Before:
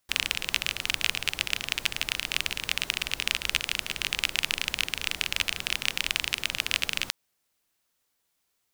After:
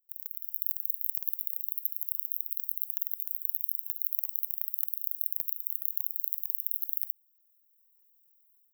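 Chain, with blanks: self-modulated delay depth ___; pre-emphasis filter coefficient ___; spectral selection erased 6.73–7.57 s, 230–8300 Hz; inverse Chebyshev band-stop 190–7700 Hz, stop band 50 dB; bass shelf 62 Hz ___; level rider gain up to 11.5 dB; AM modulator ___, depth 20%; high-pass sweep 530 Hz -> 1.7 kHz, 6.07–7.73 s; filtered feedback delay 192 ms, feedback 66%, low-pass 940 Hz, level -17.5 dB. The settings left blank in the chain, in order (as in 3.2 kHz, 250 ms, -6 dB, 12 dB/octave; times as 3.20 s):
0.36 ms, 0.9, +2 dB, 42 Hz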